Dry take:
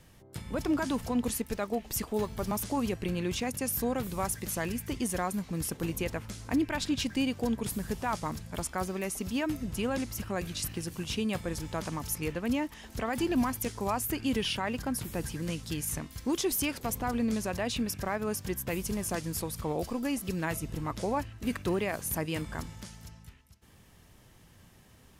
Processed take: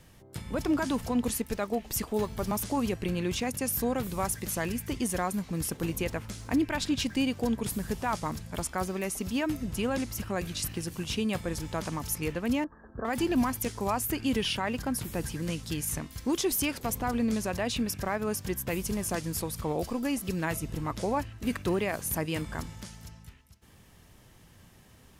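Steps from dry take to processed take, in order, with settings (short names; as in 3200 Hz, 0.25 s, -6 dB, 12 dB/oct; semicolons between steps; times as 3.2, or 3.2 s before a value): 5.59–7.35 crackle 95/s -53 dBFS; 12.64–13.05 rippled Chebyshev low-pass 1700 Hz, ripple 6 dB; gain +1.5 dB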